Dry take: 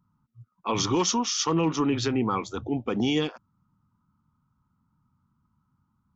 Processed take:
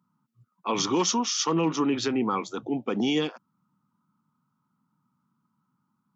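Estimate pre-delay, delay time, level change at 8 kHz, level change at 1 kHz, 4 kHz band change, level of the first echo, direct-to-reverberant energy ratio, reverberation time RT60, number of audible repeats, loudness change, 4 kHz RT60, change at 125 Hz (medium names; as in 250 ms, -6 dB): no reverb, no echo, no reading, 0.0 dB, 0.0 dB, no echo, no reverb, no reverb, no echo, -0.5 dB, no reverb, -5.0 dB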